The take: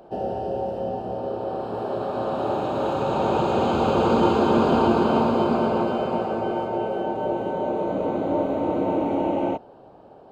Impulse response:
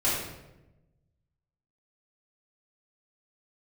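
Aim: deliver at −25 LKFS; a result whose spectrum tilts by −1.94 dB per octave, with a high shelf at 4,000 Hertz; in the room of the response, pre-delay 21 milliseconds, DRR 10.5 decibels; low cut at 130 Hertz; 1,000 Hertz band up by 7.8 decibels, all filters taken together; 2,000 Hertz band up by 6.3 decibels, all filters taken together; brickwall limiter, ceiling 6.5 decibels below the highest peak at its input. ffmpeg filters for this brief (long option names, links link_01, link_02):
-filter_complex "[0:a]highpass=130,equalizer=frequency=1000:width_type=o:gain=9,equalizer=frequency=2000:width_type=o:gain=6.5,highshelf=frequency=4000:gain=-7,alimiter=limit=-9.5dB:level=0:latency=1,asplit=2[link_01][link_02];[1:a]atrim=start_sample=2205,adelay=21[link_03];[link_02][link_03]afir=irnorm=-1:irlink=0,volume=-22dB[link_04];[link_01][link_04]amix=inputs=2:normalize=0,volume=-5dB"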